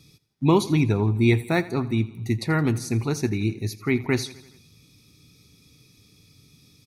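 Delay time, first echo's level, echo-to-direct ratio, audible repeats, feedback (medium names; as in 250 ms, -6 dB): 84 ms, -18.5 dB, -16.5 dB, 4, 59%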